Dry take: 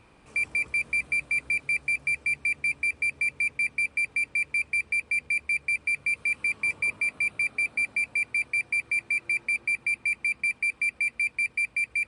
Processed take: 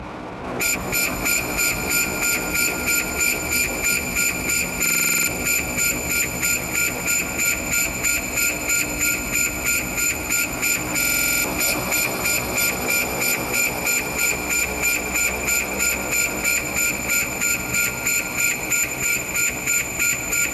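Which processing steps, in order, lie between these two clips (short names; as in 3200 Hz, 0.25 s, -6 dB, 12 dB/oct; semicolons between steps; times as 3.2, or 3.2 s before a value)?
granular stretch 1.7×, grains 47 ms; low shelf 79 Hz -3.5 dB; in parallel at -3 dB: limiter -28 dBFS, peak gain reduction 9 dB; on the sum: LPF 1300 Hz 12 dB/oct; sample leveller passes 5; HPF 52 Hz 24 dB/oct; formant-preserving pitch shift -9 st; low shelf 240 Hz -6.5 dB; on a send: swelling echo 94 ms, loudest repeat 5, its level -14.5 dB; on the sum: stuck buffer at 4.81/10.98, samples 2048, times 9; gain +9 dB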